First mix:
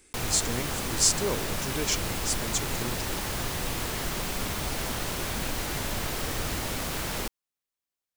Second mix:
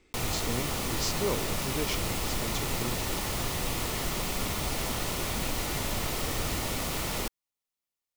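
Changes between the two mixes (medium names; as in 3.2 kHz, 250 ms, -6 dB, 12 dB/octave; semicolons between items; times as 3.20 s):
speech: add distance through air 180 m; master: add band-stop 1.6 kHz, Q 7.4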